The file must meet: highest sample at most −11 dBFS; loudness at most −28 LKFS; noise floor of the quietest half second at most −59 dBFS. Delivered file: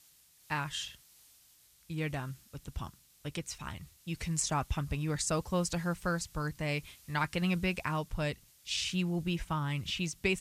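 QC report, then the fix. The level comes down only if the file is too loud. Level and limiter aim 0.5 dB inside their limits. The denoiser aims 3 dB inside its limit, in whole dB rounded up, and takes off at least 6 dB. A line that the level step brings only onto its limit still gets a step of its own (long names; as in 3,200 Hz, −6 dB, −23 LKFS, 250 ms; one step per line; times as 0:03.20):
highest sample −17.5 dBFS: in spec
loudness −35.0 LKFS: in spec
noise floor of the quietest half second −63 dBFS: in spec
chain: no processing needed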